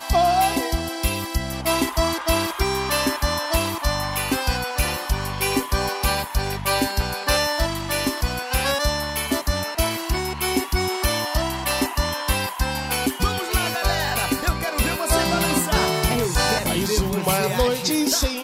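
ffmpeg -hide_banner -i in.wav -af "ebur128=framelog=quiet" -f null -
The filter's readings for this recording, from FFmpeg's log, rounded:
Integrated loudness:
  I:         -22.1 LUFS
  Threshold: -32.1 LUFS
Loudness range:
  LRA:         2.4 LU
  Threshold: -42.3 LUFS
  LRA low:   -23.1 LUFS
  LRA high:  -20.7 LUFS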